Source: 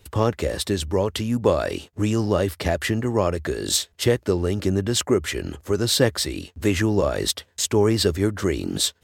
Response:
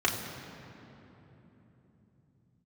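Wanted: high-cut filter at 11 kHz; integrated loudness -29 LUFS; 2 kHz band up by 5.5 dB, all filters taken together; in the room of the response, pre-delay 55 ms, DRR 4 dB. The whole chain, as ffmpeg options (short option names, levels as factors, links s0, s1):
-filter_complex "[0:a]lowpass=11000,equalizer=f=2000:t=o:g=6.5,asplit=2[s0][s1];[1:a]atrim=start_sample=2205,adelay=55[s2];[s1][s2]afir=irnorm=-1:irlink=0,volume=0.168[s3];[s0][s3]amix=inputs=2:normalize=0,volume=0.376"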